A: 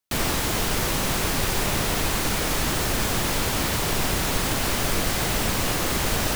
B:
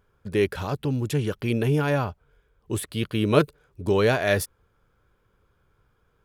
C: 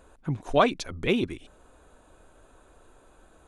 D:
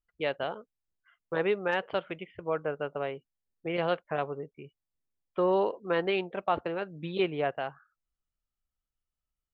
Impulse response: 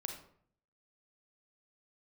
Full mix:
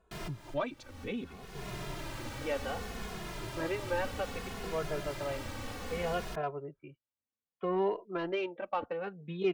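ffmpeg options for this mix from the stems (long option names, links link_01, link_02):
-filter_complex "[0:a]volume=-12.5dB[link_01];[1:a]acompressor=threshold=-27dB:ratio=6,acrossover=split=720[link_02][link_03];[link_02]aeval=exprs='val(0)*(1-0.7/2+0.7/2*cos(2*PI*5.8*n/s))':channel_layout=same[link_04];[link_03]aeval=exprs='val(0)*(1-0.7/2-0.7/2*cos(2*PI*5.8*n/s))':channel_layout=same[link_05];[link_04][link_05]amix=inputs=2:normalize=0,adelay=700,volume=-13dB[link_06];[2:a]volume=-10dB,asplit=2[link_07][link_08];[3:a]highpass=120,adelay=2250,volume=-0.5dB[link_09];[link_08]apad=whole_len=280138[link_10];[link_01][link_10]sidechaincompress=threshold=-49dB:ratio=12:attack=10:release=359[link_11];[link_11][link_06][link_07][link_09]amix=inputs=4:normalize=0,lowpass=frequency=3300:poles=1,asoftclip=type=tanh:threshold=-18dB,asplit=2[link_12][link_13];[link_13]adelay=2.4,afreqshift=-0.64[link_14];[link_12][link_14]amix=inputs=2:normalize=1"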